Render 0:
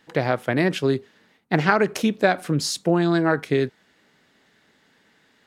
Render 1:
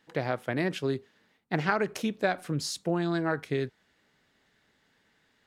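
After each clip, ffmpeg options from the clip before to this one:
-af "asubboost=boost=2.5:cutoff=120,volume=0.398"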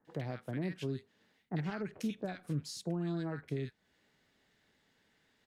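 -filter_complex "[0:a]acrossover=split=250[s0][s1];[s1]acompressor=threshold=0.00562:ratio=2[s2];[s0][s2]amix=inputs=2:normalize=0,acrossover=split=1300[s3][s4];[s4]adelay=50[s5];[s3][s5]amix=inputs=2:normalize=0,volume=0.708"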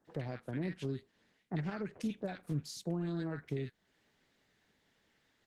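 -ar 48000 -c:a libopus -b:a 16k

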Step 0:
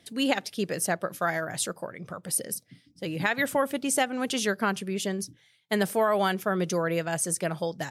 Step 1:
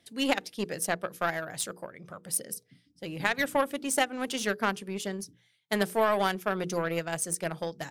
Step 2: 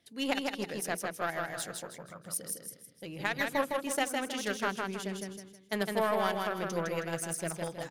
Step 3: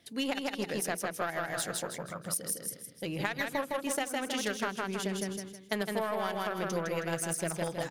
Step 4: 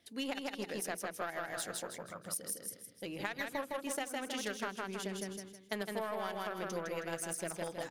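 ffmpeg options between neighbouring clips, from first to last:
-af "aeval=exprs='0.335*(cos(1*acos(clip(val(0)/0.335,-1,1)))-cos(1*PI/2))+0.0237*(cos(7*acos(clip(val(0)/0.335,-1,1)))-cos(7*PI/2))':c=same,bandreject=f=60:t=h:w=6,bandreject=f=120:t=h:w=6,bandreject=f=180:t=h:w=6,bandreject=f=240:t=h:w=6,bandreject=f=300:t=h:w=6,bandreject=f=360:t=h:w=6,bandreject=f=420:t=h:w=6,bandreject=f=480:t=h:w=6"
-filter_complex "[0:a]equalizer=f=8100:w=5.8:g=-4.5,asplit=2[s0][s1];[s1]aecho=0:1:159|318|477|636|795:0.668|0.241|0.0866|0.0312|0.0112[s2];[s0][s2]amix=inputs=2:normalize=0,volume=0.562"
-af "acompressor=threshold=0.0158:ratio=6,volume=2.24"
-af "equalizer=f=150:w=4.3:g=-9.5,volume=0.531"

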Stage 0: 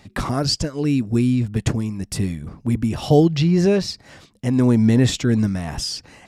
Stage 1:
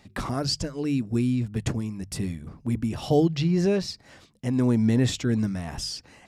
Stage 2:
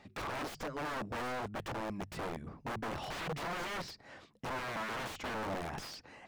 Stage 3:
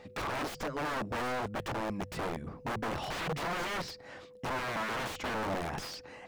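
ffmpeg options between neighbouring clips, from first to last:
-af "bandreject=f=50:t=h:w=6,bandreject=f=100:t=h:w=6,bandreject=f=150:t=h:w=6,volume=0.501"
-filter_complex "[0:a]aeval=exprs='(mod(22.4*val(0)+1,2)-1)/22.4':c=same,asplit=2[s0][s1];[s1]highpass=f=720:p=1,volume=3.98,asoftclip=type=tanh:threshold=0.0447[s2];[s0][s2]amix=inputs=2:normalize=0,lowpass=f=1200:p=1,volume=0.501,volume=0.668"
-af "aeval=exprs='val(0)+0.00158*sin(2*PI*500*n/s)':c=same,volume=1.58"

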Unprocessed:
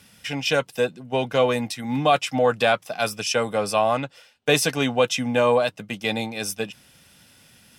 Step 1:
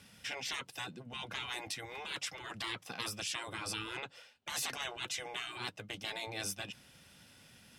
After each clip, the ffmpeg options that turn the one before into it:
-af "afftfilt=real='re*lt(hypot(re,im),0.1)':imag='im*lt(hypot(re,im),0.1)':win_size=1024:overlap=0.75,highshelf=f=9700:g=-7.5,volume=0.562"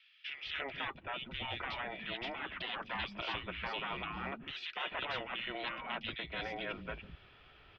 -filter_complex "[0:a]acrossover=split=380|2400[s0][s1][s2];[s1]adelay=290[s3];[s0]adelay=440[s4];[s4][s3][s2]amix=inputs=3:normalize=0,highpass=f=180:t=q:w=0.5412,highpass=f=180:t=q:w=1.307,lowpass=f=3500:t=q:w=0.5176,lowpass=f=3500:t=q:w=0.7071,lowpass=f=3500:t=q:w=1.932,afreqshift=-140,volume=1.68"

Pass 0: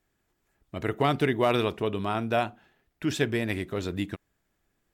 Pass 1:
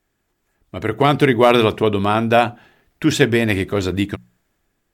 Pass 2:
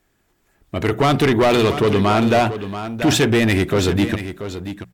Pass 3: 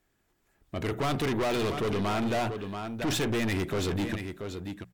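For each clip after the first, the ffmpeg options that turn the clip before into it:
-af "bandreject=f=60:t=h:w=6,bandreject=f=120:t=h:w=6,bandreject=f=180:t=h:w=6,dynaudnorm=f=280:g=7:m=2.37,volume=1.68"
-filter_complex "[0:a]asplit=2[s0][s1];[s1]alimiter=limit=0.398:level=0:latency=1,volume=0.944[s2];[s0][s2]amix=inputs=2:normalize=0,asoftclip=type=tanh:threshold=0.282,aecho=1:1:682:0.282"
-af "aeval=exprs='(tanh(7.94*val(0)+0.3)-tanh(0.3))/7.94':c=same,volume=0.422"

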